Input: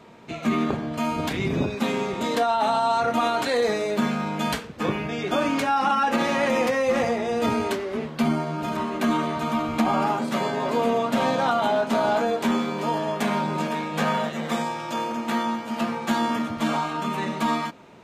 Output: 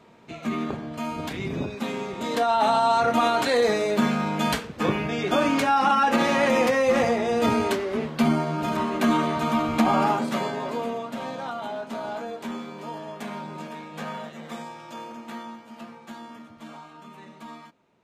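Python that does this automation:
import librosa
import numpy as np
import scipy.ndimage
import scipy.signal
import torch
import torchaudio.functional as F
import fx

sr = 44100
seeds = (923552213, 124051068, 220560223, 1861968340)

y = fx.gain(x, sr, db=fx.line((2.15, -5.0), (2.57, 1.5), (10.11, 1.5), (11.16, -10.5), (15.1, -10.5), (16.26, -18.0)))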